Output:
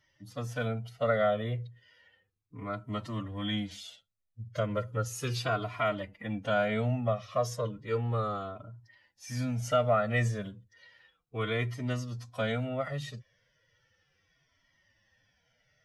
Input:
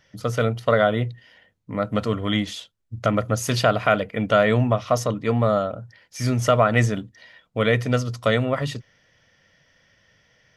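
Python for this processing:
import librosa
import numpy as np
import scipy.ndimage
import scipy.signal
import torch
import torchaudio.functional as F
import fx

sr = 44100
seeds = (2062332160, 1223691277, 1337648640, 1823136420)

y = fx.stretch_vocoder(x, sr, factor=1.5)
y = fx.comb_cascade(y, sr, direction='falling', hz=0.34)
y = y * 10.0 ** (-6.0 / 20.0)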